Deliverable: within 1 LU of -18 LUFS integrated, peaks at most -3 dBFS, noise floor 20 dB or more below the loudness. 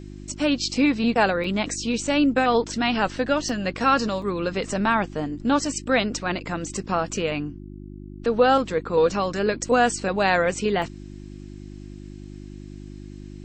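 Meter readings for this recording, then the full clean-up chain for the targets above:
dropouts 5; longest dropout 3.0 ms; hum 50 Hz; highest harmonic 350 Hz; hum level -37 dBFS; loudness -23.0 LUFS; peak level -7.0 dBFS; loudness target -18.0 LUFS
-> interpolate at 1.44/3.49/4.22/9.33/10.82 s, 3 ms; de-hum 50 Hz, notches 7; trim +5 dB; peak limiter -3 dBFS

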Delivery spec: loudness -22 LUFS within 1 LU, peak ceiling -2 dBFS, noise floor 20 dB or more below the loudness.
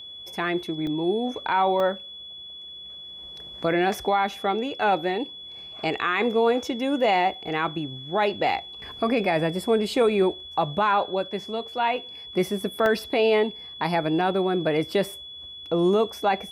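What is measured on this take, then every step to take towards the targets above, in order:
dropouts 3; longest dropout 1.1 ms; steady tone 3.4 kHz; tone level -38 dBFS; loudness -24.5 LUFS; peak level -12.0 dBFS; loudness target -22.0 LUFS
-> interpolate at 0.87/1.80/12.86 s, 1.1 ms; band-stop 3.4 kHz, Q 30; trim +2.5 dB

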